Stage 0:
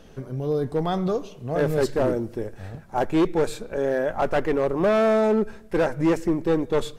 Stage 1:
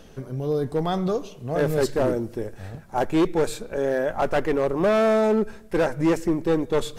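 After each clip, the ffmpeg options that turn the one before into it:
-af "highshelf=f=4.8k:g=4.5,areverse,acompressor=mode=upward:threshold=-35dB:ratio=2.5,areverse"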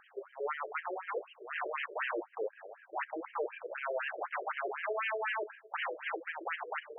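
-af "aeval=exprs='0.0562*(abs(mod(val(0)/0.0562+3,4)-2)-1)':c=same,afftfilt=real='re*between(b*sr/1024,450*pow(2300/450,0.5+0.5*sin(2*PI*4*pts/sr))/1.41,450*pow(2300/450,0.5+0.5*sin(2*PI*4*pts/sr))*1.41)':imag='im*between(b*sr/1024,450*pow(2300/450,0.5+0.5*sin(2*PI*4*pts/sr))/1.41,450*pow(2300/450,0.5+0.5*sin(2*PI*4*pts/sr))*1.41)':win_size=1024:overlap=0.75"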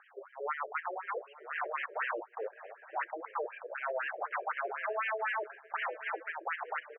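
-af "highpass=590,lowpass=2.1k,aecho=1:1:866:0.0891,volume=3dB"

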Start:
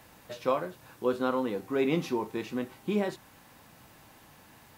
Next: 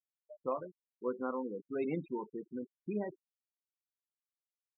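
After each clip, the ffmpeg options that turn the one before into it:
-af "afftfilt=real='re*gte(hypot(re,im),0.0501)':imag='im*gte(hypot(re,im),0.0501)':win_size=1024:overlap=0.75,volume=-8dB"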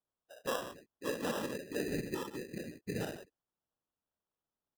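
-af "aecho=1:1:58.31|142.9:0.562|0.316,afftfilt=real='hypot(re,im)*cos(2*PI*random(0))':imag='hypot(re,im)*sin(2*PI*random(1))':win_size=512:overlap=0.75,acrusher=samples=20:mix=1:aa=0.000001,volume=4.5dB"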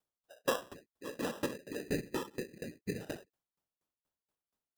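-af "aeval=exprs='val(0)*pow(10,-25*if(lt(mod(4.2*n/s,1),2*abs(4.2)/1000),1-mod(4.2*n/s,1)/(2*abs(4.2)/1000),(mod(4.2*n/s,1)-2*abs(4.2)/1000)/(1-2*abs(4.2)/1000))/20)':c=same,volume=7dB"

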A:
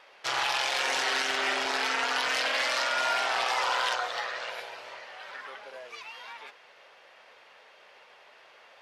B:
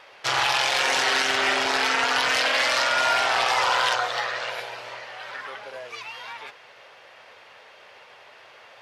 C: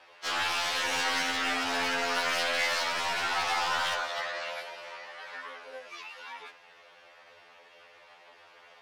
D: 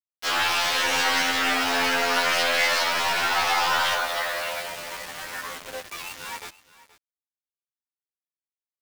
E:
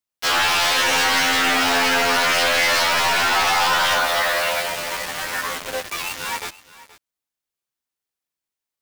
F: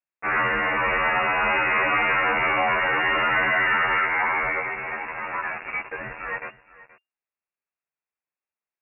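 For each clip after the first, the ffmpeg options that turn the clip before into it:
-af "equalizer=f=110:t=o:w=0.87:g=10.5,acontrast=52"
-af "aeval=exprs='clip(val(0),-1,0.1)':c=same,afftfilt=real='re*2*eq(mod(b,4),0)':imag='im*2*eq(mod(b,4),0)':win_size=2048:overlap=0.75,volume=-4dB"
-af "acrusher=bits=6:mix=0:aa=0.000001,aecho=1:1:475:0.119,volume=6.5dB"
-filter_complex "[0:a]asplit=2[a][b];[b]alimiter=limit=-18dB:level=0:latency=1,volume=1dB[c];[a][c]amix=inputs=2:normalize=0,asoftclip=type=hard:threshold=-16.5dB,volume=2dB"
-af "lowpass=f=2.4k:t=q:w=0.5098,lowpass=f=2.4k:t=q:w=0.6013,lowpass=f=2.4k:t=q:w=0.9,lowpass=f=2.4k:t=q:w=2.563,afreqshift=-2800,volume=-2dB"

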